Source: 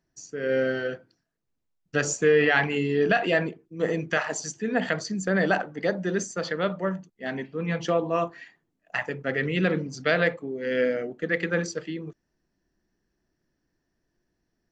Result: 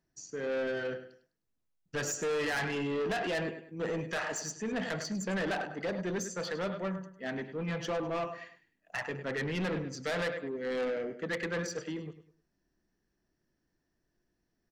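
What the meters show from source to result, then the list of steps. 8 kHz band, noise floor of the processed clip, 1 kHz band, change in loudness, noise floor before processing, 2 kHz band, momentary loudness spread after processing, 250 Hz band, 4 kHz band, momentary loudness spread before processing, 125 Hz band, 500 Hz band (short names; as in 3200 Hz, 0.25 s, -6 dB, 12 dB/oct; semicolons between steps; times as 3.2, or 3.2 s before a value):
-5.0 dB, -81 dBFS, -8.0 dB, -8.5 dB, -78 dBFS, -9.5 dB, 7 LU, -8.0 dB, -5.5 dB, 11 LU, -8.0 dB, -8.5 dB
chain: feedback echo 0.102 s, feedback 31%, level -13 dB; soft clip -25.5 dBFS, distortion -7 dB; gain -3.5 dB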